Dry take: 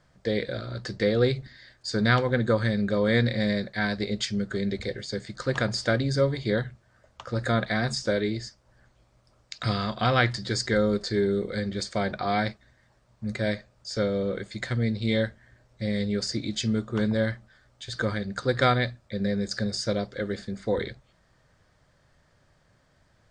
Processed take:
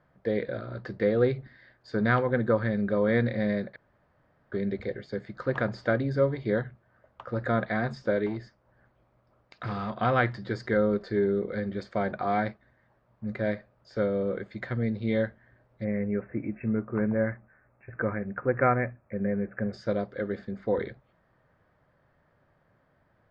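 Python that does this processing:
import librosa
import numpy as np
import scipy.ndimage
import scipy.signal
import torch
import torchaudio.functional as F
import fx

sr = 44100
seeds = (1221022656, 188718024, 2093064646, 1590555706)

y = fx.overload_stage(x, sr, gain_db=25.5, at=(8.26, 10.01))
y = fx.brickwall_lowpass(y, sr, high_hz=2700.0, at=(15.83, 19.72), fade=0.02)
y = fx.edit(y, sr, fx.room_tone_fill(start_s=3.76, length_s=0.76), tone=tone)
y = scipy.signal.sosfilt(scipy.signal.butter(2, 1700.0, 'lowpass', fs=sr, output='sos'), y)
y = fx.low_shelf(y, sr, hz=85.0, db=-11.5)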